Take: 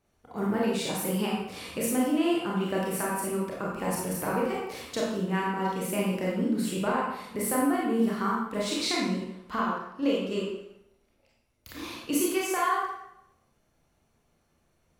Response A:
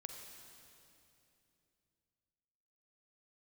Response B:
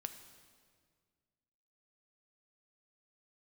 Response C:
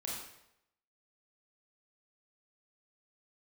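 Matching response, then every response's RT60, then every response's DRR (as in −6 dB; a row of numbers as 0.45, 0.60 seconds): C; 2.8, 1.9, 0.80 seconds; 3.5, 7.5, −4.5 decibels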